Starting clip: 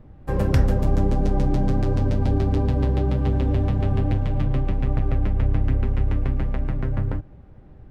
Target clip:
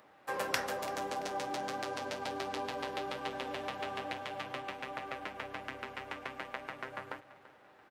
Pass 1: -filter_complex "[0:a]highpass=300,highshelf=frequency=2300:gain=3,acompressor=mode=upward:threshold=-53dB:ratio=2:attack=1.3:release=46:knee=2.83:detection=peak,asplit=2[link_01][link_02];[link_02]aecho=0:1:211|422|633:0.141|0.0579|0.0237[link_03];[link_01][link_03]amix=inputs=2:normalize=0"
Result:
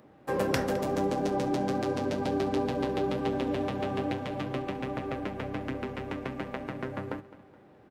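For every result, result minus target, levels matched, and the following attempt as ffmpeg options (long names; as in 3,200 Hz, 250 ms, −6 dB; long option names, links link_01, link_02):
250 Hz band +8.5 dB; echo 126 ms early
-filter_complex "[0:a]highpass=870,highshelf=frequency=2300:gain=3,acompressor=mode=upward:threshold=-53dB:ratio=2:attack=1.3:release=46:knee=2.83:detection=peak,asplit=2[link_01][link_02];[link_02]aecho=0:1:211|422|633:0.141|0.0579|0.0237[link_03];[link_01][link_03]amix=inputs=2:normalize=0"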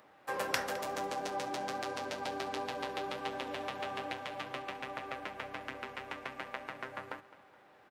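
echo 126 ms early
-filter_complex "[0:a]highpass=870,highshelf=frequency=2300:gain=3,acompressor=mode=upward:threshold=-53dB:ratio=2:attack=1.3:release=46:knee=2.83:detection=peak,asplit=2[link_01][link_02];[link_02]aecho=0:1:337|674|1011:0.141|0.0579|0.0237[link_03];[link_01][link_03]amix=inputs=2:normalize=0"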